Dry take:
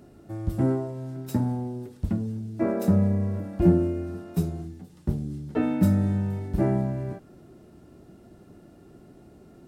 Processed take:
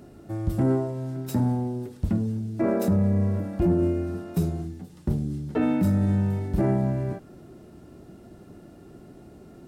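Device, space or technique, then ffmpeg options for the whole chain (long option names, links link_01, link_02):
soft clipper into limiter: -af "asoftclip=type=tanh:threshold=-10dB,alimiter=limit=-19dB:level=0:latency=1:release=16,volume=3.5dB"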